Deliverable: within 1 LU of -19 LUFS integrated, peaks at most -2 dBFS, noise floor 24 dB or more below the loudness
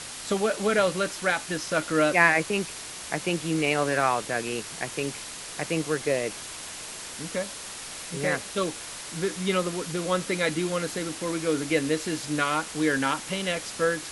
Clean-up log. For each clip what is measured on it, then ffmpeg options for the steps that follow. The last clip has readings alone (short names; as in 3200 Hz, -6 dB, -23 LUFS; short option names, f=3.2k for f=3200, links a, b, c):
noise floor -39 dBFS; noise floor target -51 dBFS; loudness -27.0 LUFS; peak -5.0 dBFS; loudness target -19.0 LUFS
-> -af "afftdn=nr=12:nf=-39"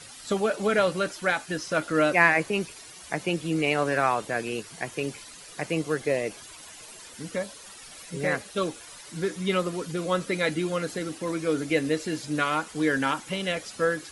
noise floor -46 dBFS; noise floor target -51 dBFS
-> -af "afftdn=nr=6:nf=-46"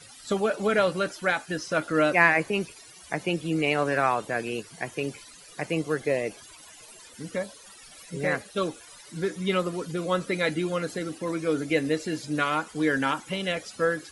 noise floor -49 dBFS; noise floor target -51 dBFS
-> -af "afftdn=nr=6:nf=-49"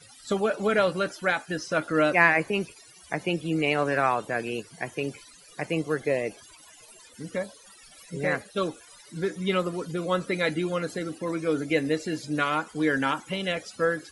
noise floor -52 dBFS; loudness -27.0 LUFS; peak -5.0 dBFS; loudness target -19.0 LUFS
-> -af "volume=8dB,alimiter=limit=-2dB:level=0:latency=1"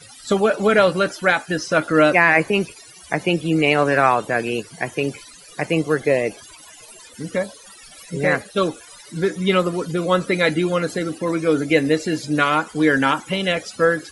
loudness -19.5 LUFS; peak -2.0 dBFS; noise floor -44 dBFS